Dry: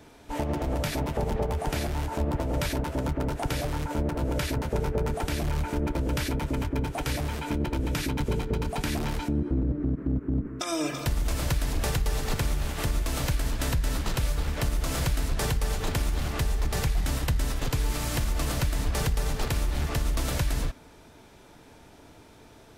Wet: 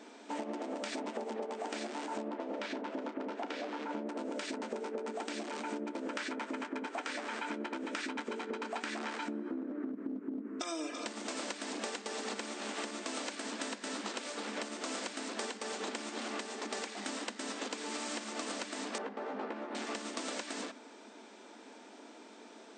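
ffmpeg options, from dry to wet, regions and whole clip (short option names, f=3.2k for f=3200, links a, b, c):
-filter_complex "[0:a]asettb=1/sr,asplit=3[a][b][c];[a]atrim=end=2.284[d];[b]atrim=start=2.28:end=4.07,asetpts=PTS-STARTPTS,afade=t=in:d=0.004:c=qsin,afade=t=out:st=1.786:d=0.004:c=qsin,lowpass=3.8k,asplit=2[e][f];[f]adelay=33,volume=-13dB[g];[e][g]amix=inputs=2:normalize=0,atrim=end_sample=78939[h];[c]atrim=start=4.066[i];[d][h]acrossfade=d=0.004:c1=hsin:c2=qsin[j];[j][i]acrossfade=d=0.004:c1=qsin:c2=hsin,asettb=1/sr,asplit=3[k][l][m];[k]atrim=end=6.024[n];[l]atrim=start=6.02:end=9.92,asetpts=PTS-STARTPTS,afade=t=in:d=0.004:c=qsin,afade=t=out:st=3.896:d=0.004:c=qsin,equalizer=f=1.5k:w=0.86:g=8.5,asplit=2[o][p];[p]adelay=12,volume=-13dB[q];[o][q]amix=inputs=2:normalize=0,atrim=end_sample=171990[r];[m]atrim=start=9.916[s];[n][r]acrossfade=d=0.004:c1=hsin:c2=qsin[t];[t][s]acrossfade=d=0.004:c1=qsin:c2=hsin,asettb=1/sr,asplit=3[u][v][w];[u]atrim=end=18.984[x];[v]atrim=start=18.98:end=19.75,asetpts=PTS-STARTPTS,afade=t=in:d=0.004:c=qsin,afade=t=out:st=0.766:d=0.004:c=qsin,lowpass=1.4k,asplit=2[y][z];[z]adelay=15,volume=-5.5dB[aa];[y][aa]amix=inputs=2:normalize=0,atrim=end_sample=33957[ab];[w]atrim=start=19.746[ac];[x][ab]acrossfade=d=0.004:c1=hsin:c2=qsin[ad];[ad][ac]acrossfade=d=0.004:c1=qsin:c2=hsin,afftfilt=real='re*between(b*sr/4096,200,8900)':imag='im*between(b*sr/4096,200,8900)':win_size=4096:overlap=0.75,acompressor=threshold=-36dB:ratio=6"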